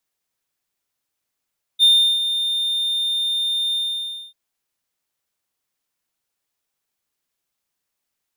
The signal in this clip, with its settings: ADSR triangle 3620 Hz, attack 42 ms, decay 0.355 s, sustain -10 dB, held 1.95 s, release 0.591 s -7 dBFS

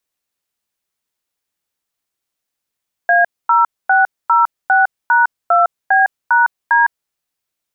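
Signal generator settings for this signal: DTMF "A0606#2B#D", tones 0.157 s, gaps 0.245 s, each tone -11 dBFS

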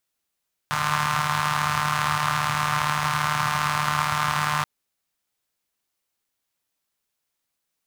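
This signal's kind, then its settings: four-cylinder engine model, steady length 3.93 s, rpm 4500, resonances 130/1100 Hz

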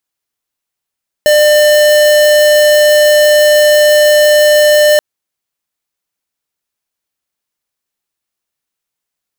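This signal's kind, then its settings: tone square 599 Hz -7 dBFS 3.73 s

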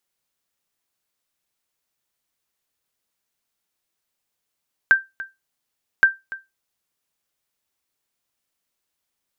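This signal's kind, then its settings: sonar ping 1570 Hz, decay 0.20 s, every 1.12 s, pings 2, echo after 0.29 s, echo -18 dB -5 dBFS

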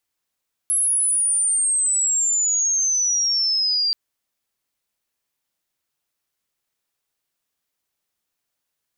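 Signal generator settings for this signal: chirp logarithmic 11000 Hz -> 4700 Hz -16.5 dBFS -> -17.5 dBFS 3.23 s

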